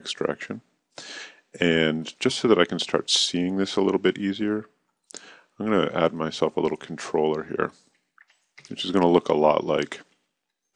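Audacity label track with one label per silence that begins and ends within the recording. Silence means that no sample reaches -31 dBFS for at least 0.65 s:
7.680000	8.650000	silence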